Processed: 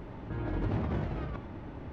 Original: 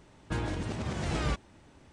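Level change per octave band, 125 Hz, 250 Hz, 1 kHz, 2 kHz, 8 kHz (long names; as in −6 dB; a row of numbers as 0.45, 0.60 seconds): +0.5 dB, +0.5 dB, −3.0 dB, −7.0 dB, below −25 dB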